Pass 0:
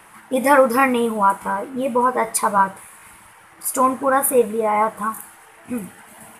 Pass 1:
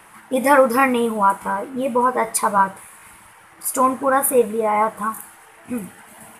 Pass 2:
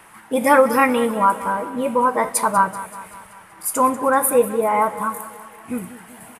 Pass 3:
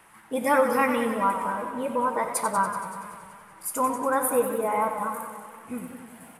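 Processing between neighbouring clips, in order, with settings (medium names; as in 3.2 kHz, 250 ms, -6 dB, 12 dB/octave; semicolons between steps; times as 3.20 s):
no audible change
feedback delay 191 ms, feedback 57%, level -15 dB
on a send at -14.5 dB: reverberation RT60 1.7 s, pre-delay 50 ms; on the sum: modulated delay 94 ms, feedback 72%, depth 104 cents, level -10 dB; trim -8 dB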